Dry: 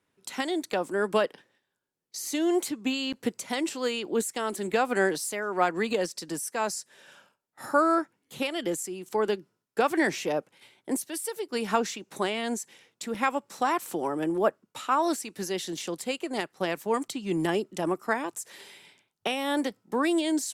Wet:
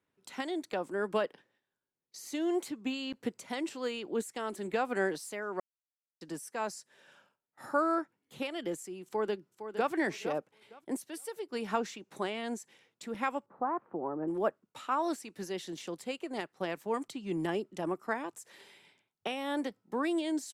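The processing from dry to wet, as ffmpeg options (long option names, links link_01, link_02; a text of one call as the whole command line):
ffmpeg -i in.wav -filter_complex "[0:a]asplit=2[link_01][link_02];[link_02]afade=type=in:start_time=9.05:duration=0.01,afade=type=out:start_time=9.92:duration=0.01,aecho=0:1:460|920|1380:0.316228|0.0632456|0.0126491[link_03];[link_01][link_03]amix=inputs=2:normalize=0,asettb=1/sr,asplit=3[link_04][link_05][link_06];[link_04]atrim=end=13.464[link_07];[link_05]atrim=start=13.46:end=14.28,asetpts=PTS-STARTPTS,afade=type=in:duration=0.004:curve=qsin,afade=type=out:start_time=0.816:duration=0.004:curve=qsin,lowpass=frequency=1300:width=0.5412,lowpass=frequency=1300:width=1.3066[link_08];[link_06]atrim=start=14.276[link_09];[link_07][link_08]acrossfade=duration=0.004:curve1=hsin:curve2=qsin[link_10];[link_10][link_09]acrossfade=duration=0.004:curve1=qsin:curve2=hsin,asplit=3[link_11][link_12][link_13];[link_11]atrim=end=5.6,asetpts=PTS-STARTPTS,afade=type=out:start_time=5.596:duration=0.004:curve=hsin[link_14];[link_12]atrim=start=5.6:end=6.21,asetpts=PTS-STARTPTS,volume=0[link_15];[link_13]atrim=start=6.21,asetpts=PTS-STARTPTS,afade=type=in:duration=0.004:curve=hsin[link_16];[link_14][link_15][link_16]concat=n=3:v=0:a=1,highshelf=frequency=4500:gain=-7.5,volume=-6dB" out.wav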